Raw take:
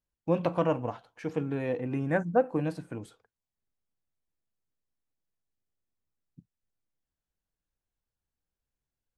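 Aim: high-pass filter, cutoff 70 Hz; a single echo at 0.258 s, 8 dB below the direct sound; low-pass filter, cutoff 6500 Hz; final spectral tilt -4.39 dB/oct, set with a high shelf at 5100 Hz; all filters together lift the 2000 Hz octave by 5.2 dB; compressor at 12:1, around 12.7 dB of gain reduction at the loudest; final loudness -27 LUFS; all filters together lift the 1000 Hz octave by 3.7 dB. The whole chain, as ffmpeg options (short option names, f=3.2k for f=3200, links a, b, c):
-af "highpass=70,lowpass=6.5k,equalizer=f=1k:t=o:g=4,equalizer=f=2k:t=o:g=4.5,highshelf=f=5.1k:g=6.5,acompressor=threshold=-29dB:ratio=12,aecho=1:1:258:0.398,volume=8.5dB"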